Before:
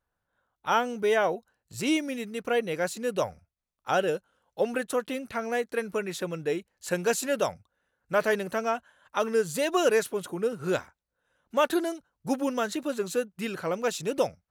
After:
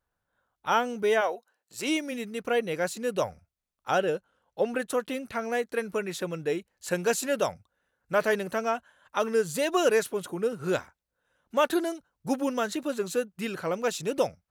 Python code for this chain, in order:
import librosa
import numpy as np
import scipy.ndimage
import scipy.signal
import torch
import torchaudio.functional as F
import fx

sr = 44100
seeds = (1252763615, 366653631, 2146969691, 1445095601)

y = fx.highpass(x, sr, hz=fx.line((1.2, 550.0), (2.11, 260.0)), slope=12, at=(1.2, 2.11), fade=0.02)
y = fx.high_shelf(y, sr, hz=5000.0, db=-6.5, at=(3.98, 4.8))